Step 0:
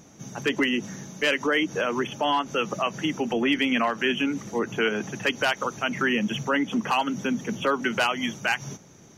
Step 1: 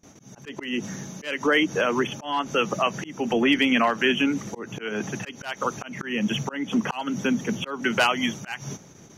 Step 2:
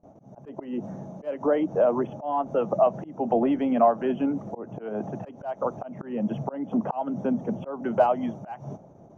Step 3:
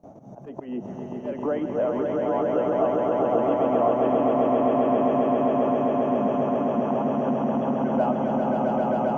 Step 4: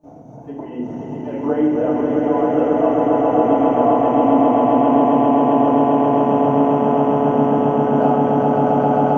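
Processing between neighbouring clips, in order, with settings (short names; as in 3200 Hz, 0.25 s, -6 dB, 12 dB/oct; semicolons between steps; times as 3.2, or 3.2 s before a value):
gate with hold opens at -41 dBFS; auto swell 0.258 s; gain +3 dB
EQ curve 440 Hz 0 dB, 650 Hz +11 dB, 1900 Hz -20 dB, 4700 Hz -26 dB; gain -2 dB
swelling echo 0.133 s, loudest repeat 8, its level -3 dB; three-band squash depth 40%; gain -5.5 dB
swelling echo 0.161 s, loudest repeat 8, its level -13 dB; FDN reverb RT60 0.91 s, low-frequency decay 1.45×, high-frequency decay 0.7×, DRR -8 dB; gain -3.5 dB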